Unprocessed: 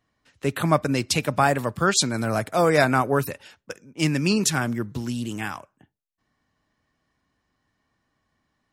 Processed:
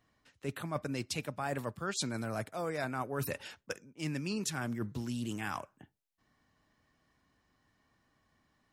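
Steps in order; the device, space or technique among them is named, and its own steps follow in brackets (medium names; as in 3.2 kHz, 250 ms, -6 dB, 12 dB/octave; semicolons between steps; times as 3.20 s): compression on the reversed sound (reverse; compression 6:1, threshold -34 dBFS, peak gain reduction 20 dB; reverse)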